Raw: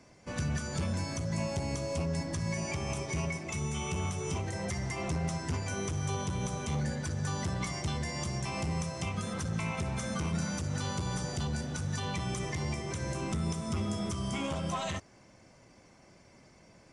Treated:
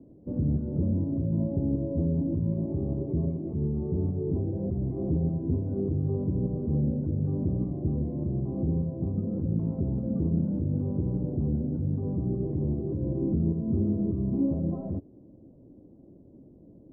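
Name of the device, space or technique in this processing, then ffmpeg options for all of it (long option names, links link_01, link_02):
under water: -af "lowpass=frequency=480:width=0.5412,lowpass=frequency=480:width=1.3066,equalizer=frequency=290:width_type=o:width=0.57:gain=8.5,volume=5.5dB"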